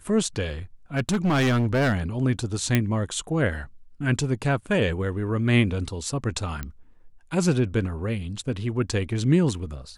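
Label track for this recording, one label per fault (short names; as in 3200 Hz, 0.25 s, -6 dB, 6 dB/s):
0.960000	2.000000	clipped -18.5 dBFS
2.750000	2.750000	pop -7 dBFS
6.630000	6.630000	pop -17 dBFS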